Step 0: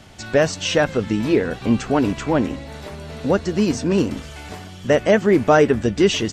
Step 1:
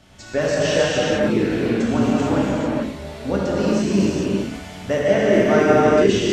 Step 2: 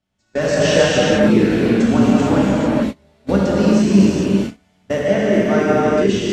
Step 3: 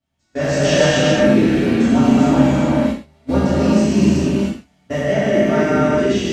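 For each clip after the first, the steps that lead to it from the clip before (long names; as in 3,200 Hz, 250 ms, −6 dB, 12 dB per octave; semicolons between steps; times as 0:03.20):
reverb whose tail is shaped and stops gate 480 ms flat, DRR −7.5 dB; level −8 dB
noise gate −25 dBFS, range −26 dB; parametric band 200 Hz +5.5 dB 0.4 octaves; automatic gain control; level −1 dB
reverb whose tail is shaped and stops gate 160 ms falling, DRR −7 dB; level −7.5 dB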